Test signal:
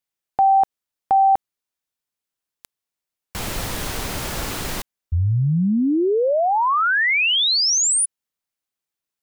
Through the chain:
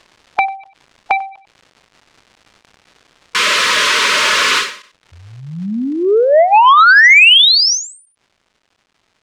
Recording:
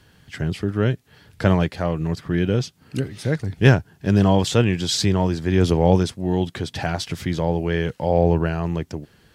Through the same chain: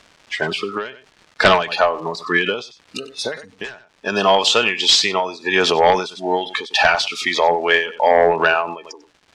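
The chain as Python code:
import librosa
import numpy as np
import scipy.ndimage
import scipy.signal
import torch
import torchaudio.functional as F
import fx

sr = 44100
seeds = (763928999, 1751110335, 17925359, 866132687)

p1 = fx.noise_reduce_blind(x, sr, reduce_db=28)
p2 = scipy.signal.sosfilt(scipy.signal.butter(2, 810.0, 'highpass', fs=sr, output='sos'), p1)
p3 = p2 + 0.3 * np.pad(p2, (int(4.7 * sr / 1000.0), 0))[:len(p2)]
p4 = fx.dmg_crackle(p3, sr, seeds[0], per_s=380.0, level_db=-52.0)
p5 = fx.rider(p4, sr, range_db=5, speed_s=2.0)
p6 = fx.fold_sine(p5, sr, drive_db=13, ceiling_db=-3.0)
p7 = fx.air_absorb(p6, sr, metres=96.0)
p8 = p7 + fx.echo_single(p7, sr, ms=95, db=-18.5, dry=0)
p9 = fx.dynamic_eq(p8, sr, hz=2700.0, q=1.0, threshold_db=-23.0, ratio=4.0, max_db=3)
p10 = fx.end_taper(p9, sr, db_per_s=120.0)
y = F.gain(torch.from_numpy(p10), -1.5).numpy()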